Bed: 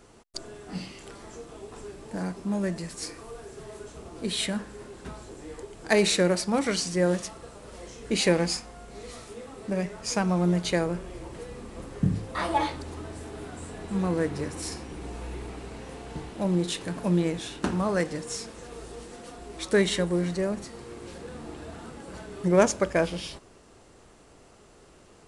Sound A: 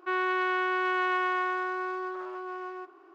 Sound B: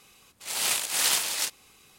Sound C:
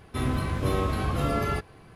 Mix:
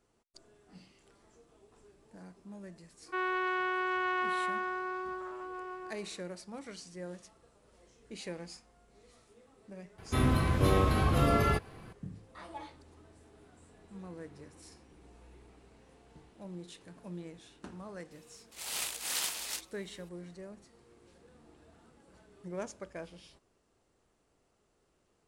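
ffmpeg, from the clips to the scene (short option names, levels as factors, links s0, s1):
-filter_complex "[0:a]volume=0.106[s0];[1:a]atrim=end=3.14,asetpts=PTS-STARTPTS,volume=0.596,afade=t=in:d=0.004:c=hsin,afade=t=out:st=3.136:d=0.004:c=hsin,adelay=3060[s1];[3:a]atrim=end=1.95,asetpts=PTS-STARTPTS,afade=t=in:d=0.004:c=hsin,afade=t=out:st=1.946:d=0.004:c=hsin,adelay=9980[s2];[2:a]atrim=end=1.98,asetpts=PTS-STARTPTS,volume=0.316,afade=t=in:d=0.004:c=hsin,afade=t=out:st=1.976:d=0.004:c=hsin,adelay=18110[s3];[s0][s1][s2][s3]amix=inputs=4:normalize=0"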